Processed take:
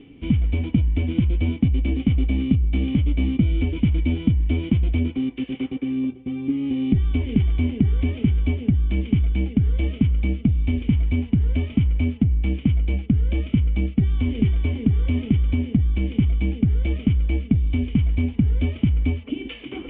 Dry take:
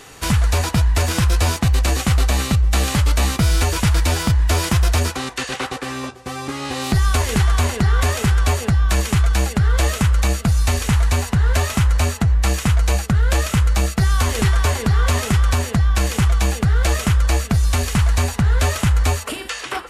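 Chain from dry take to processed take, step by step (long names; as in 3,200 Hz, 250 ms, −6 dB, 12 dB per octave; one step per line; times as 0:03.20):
formant resonators in series i
high-shelf EQ 2,200 Hz −10.5 dB
reversed playback
upward compression, threshold −35 dBFS
reversed playback
level +8.5 dB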